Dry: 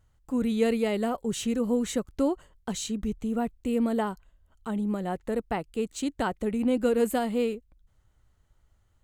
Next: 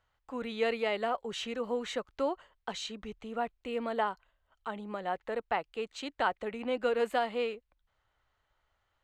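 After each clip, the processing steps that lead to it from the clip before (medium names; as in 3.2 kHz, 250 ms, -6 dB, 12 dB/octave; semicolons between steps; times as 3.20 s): three-band isolator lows -18 dB, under 530 Hz, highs -23 dB, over 4.6 kHz; trim +2 dB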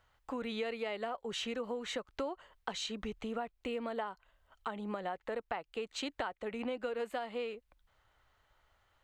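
compression 6:1, threshold -41 dBFS, peak gain reduction 16.5 dB; trim +5.5 dB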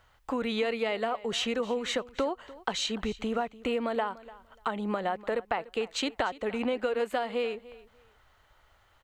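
feedback delay 294 ms, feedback 19%, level -19 dB; trim +8 dB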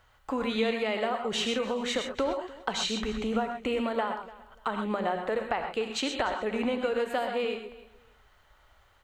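gated-style reverb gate 150 ms rising, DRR 4.5 dB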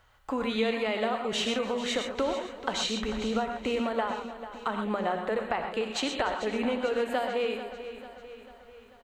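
feedback delay 443 ms, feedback 53%, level -13 dB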